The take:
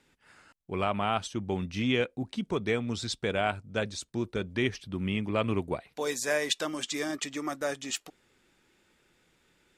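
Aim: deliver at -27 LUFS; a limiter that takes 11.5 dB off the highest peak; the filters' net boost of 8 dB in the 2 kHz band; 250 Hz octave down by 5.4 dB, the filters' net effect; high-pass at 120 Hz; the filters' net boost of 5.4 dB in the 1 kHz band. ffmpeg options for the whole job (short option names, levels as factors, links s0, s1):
-af "highpass=120,equalizer=f=250:t=o:g=-7,equalizer=f=1000:t=o:g=5.5,equalizer=f=2000:t=o:g=8.5,volume=1.88,alimiter=limit=0.211:level=0:latency=1"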